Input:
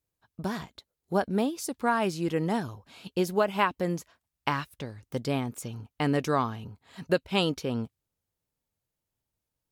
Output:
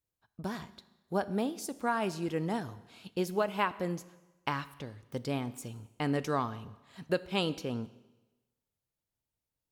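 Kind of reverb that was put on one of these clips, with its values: Schroeder reverb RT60 1.1 s, combs from 25 ms, DRR 15.5 dB; trim -5 dB

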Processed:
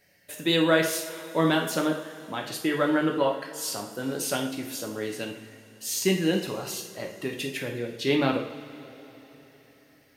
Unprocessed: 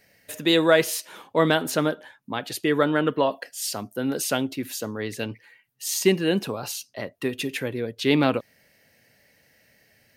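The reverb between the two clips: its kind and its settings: two-slope reverb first 0.52 s, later 4 s, from -19 dB, DRR 1 dB; trim -5 dB

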